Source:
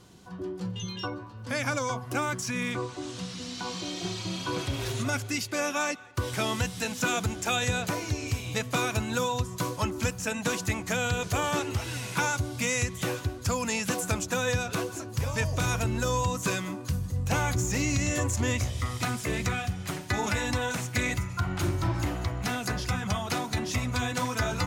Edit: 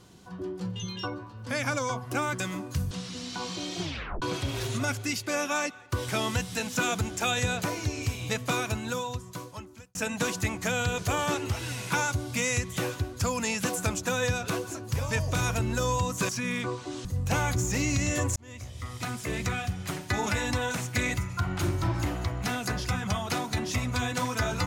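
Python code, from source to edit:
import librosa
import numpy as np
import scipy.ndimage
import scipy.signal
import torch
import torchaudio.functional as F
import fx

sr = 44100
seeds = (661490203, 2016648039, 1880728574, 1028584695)

y = fx.edit(x, sr, fx.swap(start_s=2.4, length_s=0.76, other_s=16.54, other_length_s=0.51),
    fx.tape_stop(start_s=4.06, length_s=0.41),
    fx.fade_out_span(start_s=8.66, length_s=1.54),
    fx.fade_in_span(start_s=18.36, length_s=1.65, curve='qsin'), tone=tone)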